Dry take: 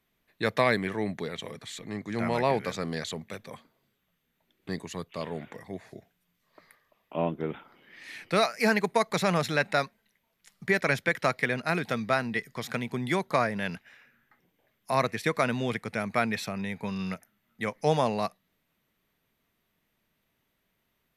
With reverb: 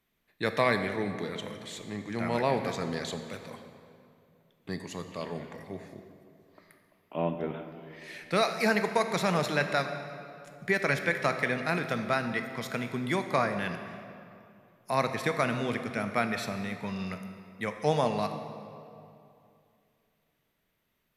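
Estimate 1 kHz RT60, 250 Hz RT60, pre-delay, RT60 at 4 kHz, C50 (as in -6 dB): 2.5 s, 2.9 s, 17 ms, 1.8 s, 8.0 dB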